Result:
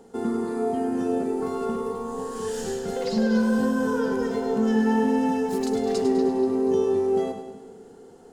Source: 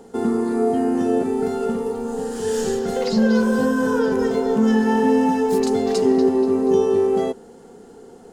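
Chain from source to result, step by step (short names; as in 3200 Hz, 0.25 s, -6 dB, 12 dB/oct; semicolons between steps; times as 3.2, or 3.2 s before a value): split-band echo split 360 Hz, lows 0.189 s, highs 0.102 s, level -8 dB; 1.41–2.47 whine 1100 Hz -31 dBFS; gain -6 dB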